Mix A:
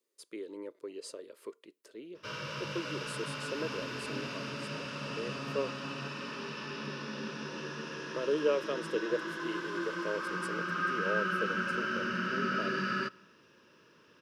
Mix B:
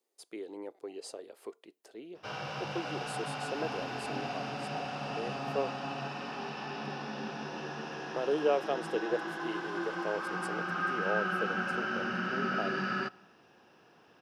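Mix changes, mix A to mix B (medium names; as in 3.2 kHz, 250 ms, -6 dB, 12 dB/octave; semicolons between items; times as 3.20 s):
background: add treble shelf 4.9 kHz -5.5 dB; master: remove Butterworth band-stop 760 Hz, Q 2.4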